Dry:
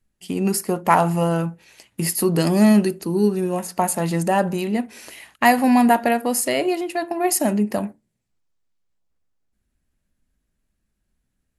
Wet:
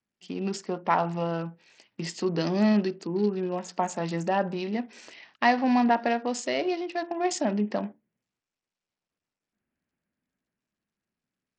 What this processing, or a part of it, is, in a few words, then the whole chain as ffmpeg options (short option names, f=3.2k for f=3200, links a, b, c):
Bluetooth headset: -af "highpass=170,dynaudnorm=f=340:g=13:m=10dB,aresample=16000,aresample=44100,volume=-8dB" -ar 44100 -c:a sbc -b:a 64k